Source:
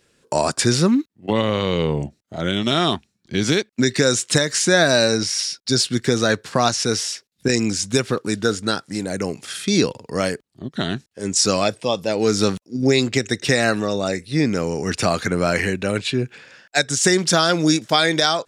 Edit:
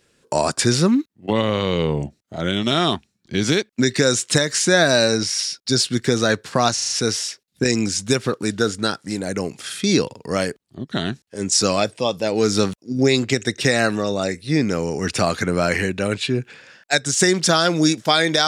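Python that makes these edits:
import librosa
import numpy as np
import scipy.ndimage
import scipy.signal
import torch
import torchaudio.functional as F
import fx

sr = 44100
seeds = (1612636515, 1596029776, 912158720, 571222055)

y = fx.edit(x, sr, fx.stutter(start_s=6.74, slice_s=0.04, count=5), tone=tone)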